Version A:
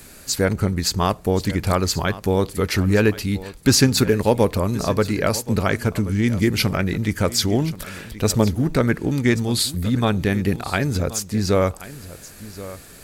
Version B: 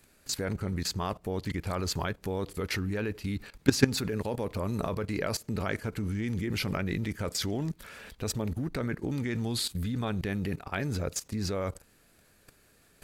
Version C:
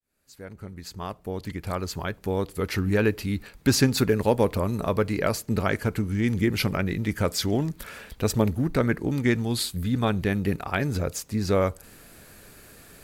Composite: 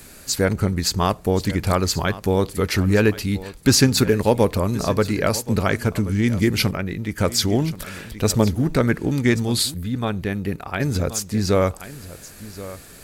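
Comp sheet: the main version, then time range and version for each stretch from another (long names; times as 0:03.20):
A
0:06.71–0:07.18: punch in from C
0:09.74–0:10.80: punch in from C
not used: B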